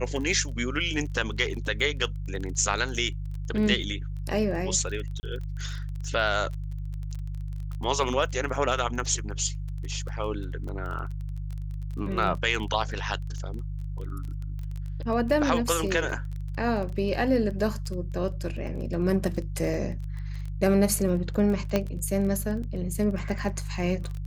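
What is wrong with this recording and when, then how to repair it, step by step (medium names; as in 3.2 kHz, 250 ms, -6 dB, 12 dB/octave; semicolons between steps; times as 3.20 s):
crackle 22 per s -33 dBFS
hum 50 Hz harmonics 3 -33 dBFS
5.20–5.23 s: dropout 30 ms
21.76 s: pop -11 dBFS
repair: de-click; de-hum 50 Hz, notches 3; interpolate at 5.20 s, 30 ms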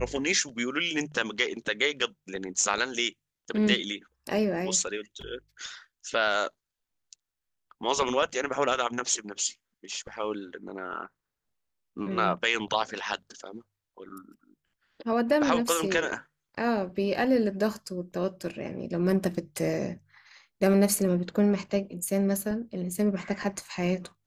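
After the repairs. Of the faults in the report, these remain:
nothing left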